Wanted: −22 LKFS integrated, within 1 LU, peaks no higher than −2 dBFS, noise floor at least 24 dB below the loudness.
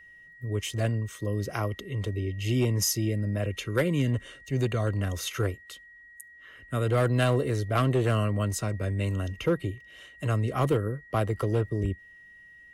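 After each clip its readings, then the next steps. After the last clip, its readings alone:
share of clipped samples 0.5%; peaks flattened at −17.5 dBFS; interfering tone 1,900 Hz; level of the tone −49 dBFS; integrated loudness −28.5 LKFS; sample peak −17.5 dBFS; target loudness −22.0 LKFS
→ clipped peaks rebuilt −17.5 dBFS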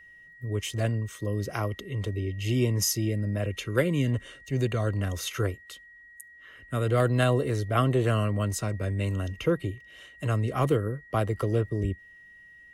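share of clipped samples 0.0%; interfering tone 1,900 Hz; level of the tone −49 dBFS
→ notch filter 1,900 Hz, Q 30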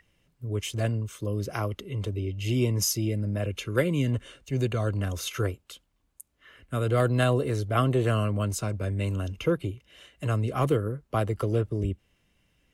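interfering tone none found; integrated loudness −28.0 LKFS; sample peak −10.5 dBFS; target loudness −22.0 LKFS
→ level +6 dB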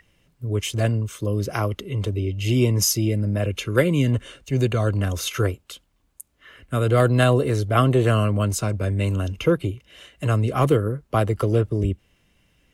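integrated loudness −22.0 LKFS; sample peak −4.5 dBFS; background noise floor −65 dBFS

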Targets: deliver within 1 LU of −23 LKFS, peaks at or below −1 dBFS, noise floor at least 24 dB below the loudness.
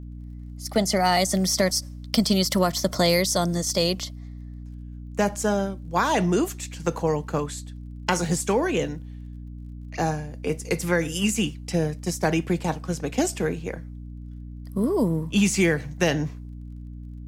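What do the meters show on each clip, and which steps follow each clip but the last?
crackle rate 23 per second; mains hum 60 Hz; hum harmonics up to 300 Hz; level of the hum −35 dBFS; integrated loudness −24.5 LKFS; sample peak −5.5 dBFS; target loudness −23.0 LKFS
→ click removal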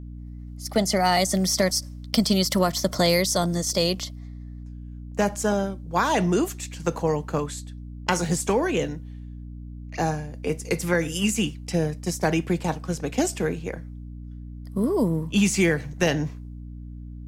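crackle rate 0.058 per second; mains hum 60 Hz; hum harmonics up to 300 Hz; level of the hum −36 dBFS
→ mains-hum notches 60/120/180/240/300 Hz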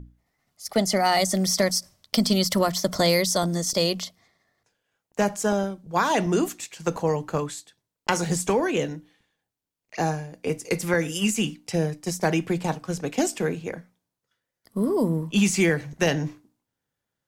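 mains hum none found; integrated loudness −24.5 LKFS; sample peak −5.5 dBFS; target loudness −23.0 LKFS
→ level +1.5 dB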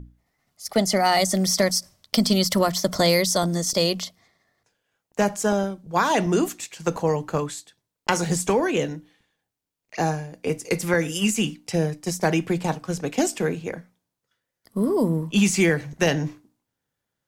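integrated loudness −23.0 LKFS; sample peak −4.0 dBFS; background noise floor −84 dBFS

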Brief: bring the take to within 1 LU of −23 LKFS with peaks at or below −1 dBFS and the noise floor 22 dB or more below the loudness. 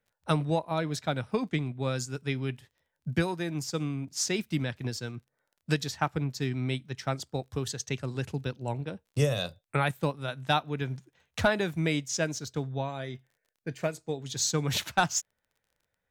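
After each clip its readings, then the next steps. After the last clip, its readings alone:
crackle rate 19 per second; integrated loudness −31.0 LKFS; sample peak −12.0 dBFS; target loudness −23.0 LKFS
→ click removal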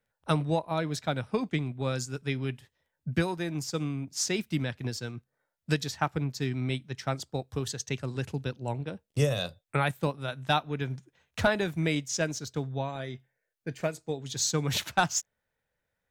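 crackle rate 0 per second; integrated loudness −31.0 LKFS; sample peak −12.0 dBFS; target loudness −23.0 LKFS
→ level +8 dB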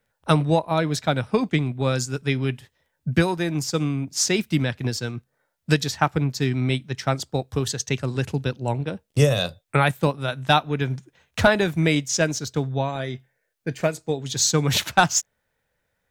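integrated loudness −23.5 LKFS; sample peak −4.0 dBFS; background noise floor −76 dBFS

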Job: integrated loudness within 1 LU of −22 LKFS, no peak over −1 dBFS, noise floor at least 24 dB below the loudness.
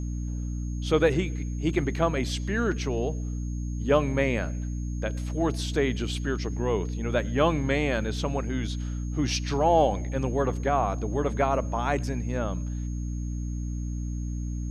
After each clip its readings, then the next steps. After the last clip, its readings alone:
mains hum 60 Hz; hum harmonics up to 300 Hz; level of the hum −28 dBFS; interfering tone 6,500 Hz; level of the tone −51 dBFS; integrated loudness −28.0 LKFS; sample peak −8.0 dBFS; target loudness −22.0 LKFS
→ hum removal 60 Hz, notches 5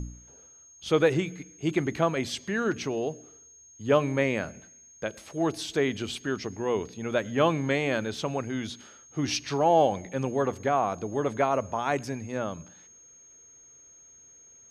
mains hum none found; interfering tone 6,500 Hz; level of the tone −51 dBFS
→ notch filter 6,500 Hz, Q 30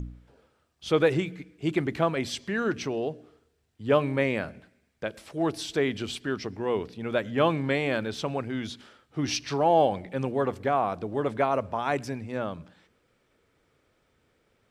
interfering tone none found; integrated loudness −28.0 LKFS; sample peak −8.5 dBFS; target loudness −22.0 LKFS
→ level +6 dB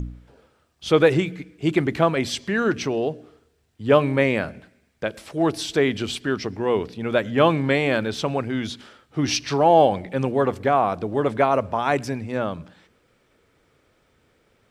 integrated loudness −22.0 LKFS; sample peak −2.5 dBFS; background noise floor −64 dBFS

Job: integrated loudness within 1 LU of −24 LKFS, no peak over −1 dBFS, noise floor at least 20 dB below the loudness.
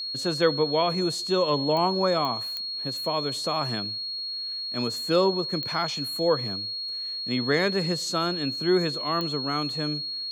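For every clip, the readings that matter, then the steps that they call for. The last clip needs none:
number of clicks 5; interfering tone 4,300 Hz; level of the tone −30 dBFS; integrated loudness −25.5 LKFS; sample peak −9.5 dBFS; target loudness −24.0 LKFS
→ click removal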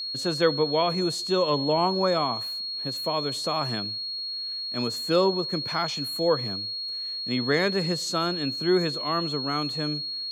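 number of clicks 0; interfering tone 4,300 Hz; level of the tone −30 dBFS
→ notch filter 4,300 Hz, Q 30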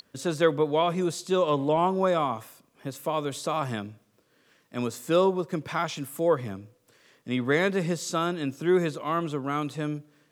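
interfering tone none found; integrated loudness −27.0 LKFS; sample peak −10.0 dBFS; target loudness −24.0 LKFS
→ level +3 dB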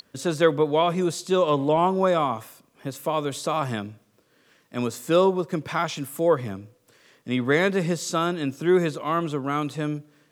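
integrated loudness −24.0 LKFS; sample peak −7.0 dBFS; background noise floor −64 dBFS

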